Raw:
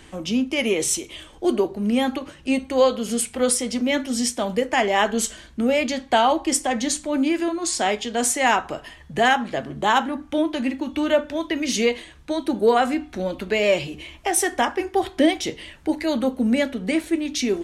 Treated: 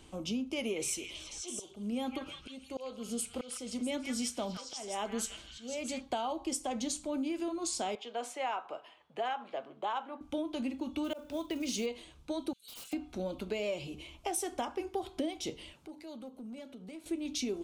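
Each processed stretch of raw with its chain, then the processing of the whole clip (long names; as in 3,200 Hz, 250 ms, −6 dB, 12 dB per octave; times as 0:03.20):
0:00.60–0:06.01: volume swells 531 ms + echo through a band-pass that steps 163 ms, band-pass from 1,800 Hz, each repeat 0.7 octaves, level −1 dB
0:07.95–0:10.21: high-pass filter 170 Hz + three-way crossover with the lows and the highs turned down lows −16 dB, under 450 Hz, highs −18 dB, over 3,300 Hz
0:11.04–0:11.86: volume swells 213 ms + log-companded quantiser 6 bits
0:12.53–0:12.93: inverse Chebyshev high-pass filter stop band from 900 Hz, stop band 50 dB + wrap-around overflow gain 32.5 dB
0:15.73–0:17.06: high-pass filter 110 Hz + downward compressor 2.5 to 1, threshold −42 dBFS + gain into a clipping stage and back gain 31.5 dB
whole clip: parametric band 1,800 Hz −14 dB 0.4 octaves; downward compressor, threshold −23 dBFS; level −8.5 dB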